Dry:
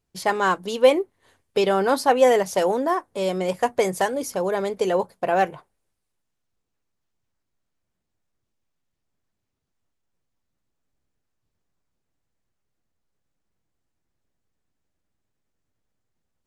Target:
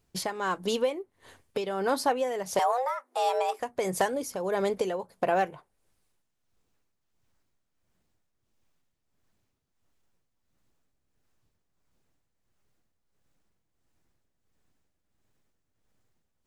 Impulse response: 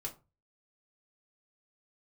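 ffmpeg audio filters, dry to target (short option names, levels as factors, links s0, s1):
-filter_complex "[0:a]asettb=1/sr,asplit=3[s0][s1][s2];[s0]atrim=end=2.594[s3];[s1]atrim=start=2.59:end=3.6,asetpts=PTS-STARTPTS,afade=t=in:d=0.004:c=qsin,afade=t=out:st=1.006:d=0.004:c=qsin,afreqshift=250[s4];[s2]atrim=start=3.596[s5];[s3][s4]acrossfade=d=0.004:c1=hsin:c2=qsin[s6];[s6][s5]acrossfade=d=0.004:c1=qsin:c2=hsin,acompressor=threshold=0.0251:ratio=3,tremolo=f=1.5:d=0.61,volume=2.11"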